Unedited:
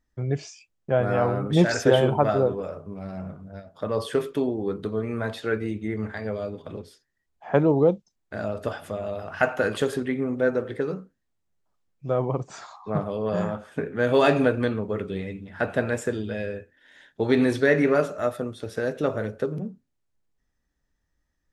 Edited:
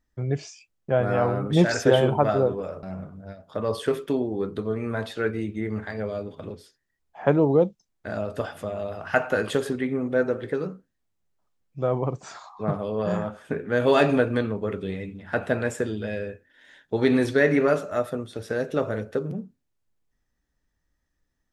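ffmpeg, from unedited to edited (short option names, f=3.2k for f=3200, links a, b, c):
-filter_complex "[0:a]asplit=2[a][b];[a]atrim=end=2.832[c];[b]atrim=start=3.098[d];[c][d]acrossfade=d=0.004:c1=hsin:c2=hsin"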